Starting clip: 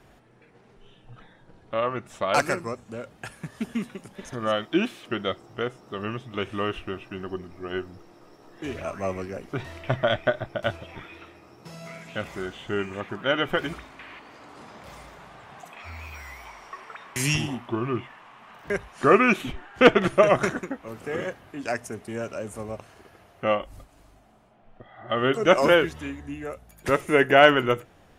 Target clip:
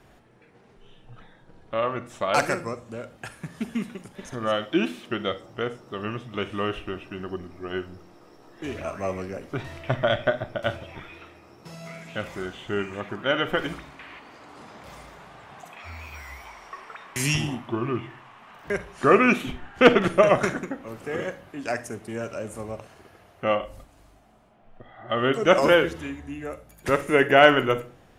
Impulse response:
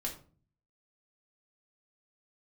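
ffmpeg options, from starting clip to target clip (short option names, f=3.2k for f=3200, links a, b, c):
-filter_complex "[0:a]asplit=2[a][b];[1:a]atrim=start_sample=2205,adelay=44[c];[b][c]afir=irnorm=-1:irlink=0,volume=-14dB[d];[a][d]amix=inputs=2:normalize=0"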